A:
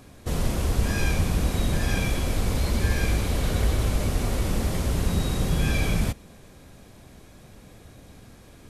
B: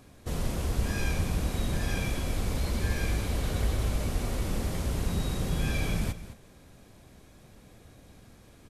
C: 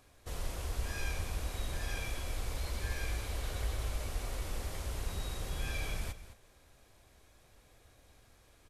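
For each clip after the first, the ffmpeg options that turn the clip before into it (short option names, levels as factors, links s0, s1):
-af "aecho=1:1:212:0.2,volume=0.531"
-af "equalizer=f=190:t=o:w=1.7:g=-13.5,volume=0.562"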